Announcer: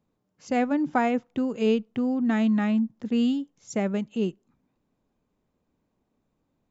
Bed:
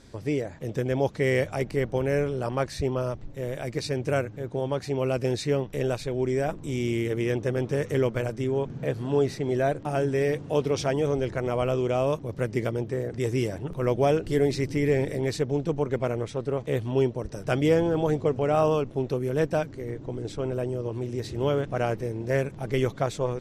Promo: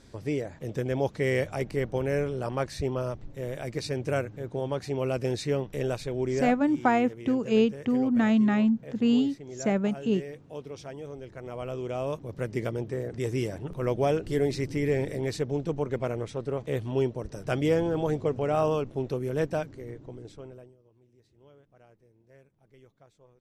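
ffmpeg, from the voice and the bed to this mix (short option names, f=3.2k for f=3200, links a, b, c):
-filter_complex "[0:a]adelay=5900,volume=0.5dB[a];[1:a]volume=9.5dB,afade=t=out:st=6.41:d=0.24:silence=0.237137,afade=t=in:st=11.26:d=1.4:silence=0.251189,afade=t=out:st=19.43:d=1.33:silence=0.0375837[b];[a][b]amix=inputs=2:normalize=0"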